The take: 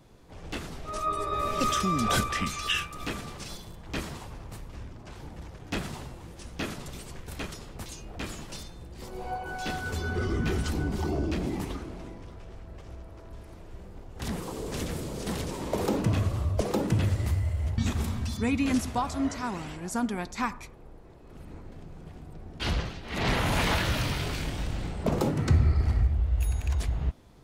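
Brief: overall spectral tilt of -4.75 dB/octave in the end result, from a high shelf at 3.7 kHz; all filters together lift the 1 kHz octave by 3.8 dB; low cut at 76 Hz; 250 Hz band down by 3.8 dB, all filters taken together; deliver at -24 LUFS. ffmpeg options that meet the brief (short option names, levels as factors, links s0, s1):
-af "highpass=76,equalizer=f=250:t=o:g=-5,equalizer=f=1000:t=o:g=6,highshelf=f=3700:g=-8,volume=2.24"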